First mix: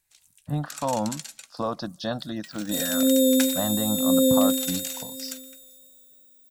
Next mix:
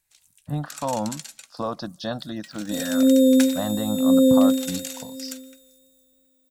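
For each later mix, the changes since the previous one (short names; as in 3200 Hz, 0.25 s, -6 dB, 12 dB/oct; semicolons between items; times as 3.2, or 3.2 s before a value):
second sound: add tilt -2.5 dB/oct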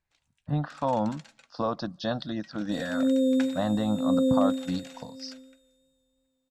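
first sound: add LPF 1200 Hz 6 dB/oct; second sound -7.5 dB; master: add air absorption 68 m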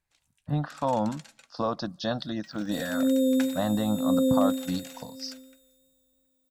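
master: remove air absorption 68 m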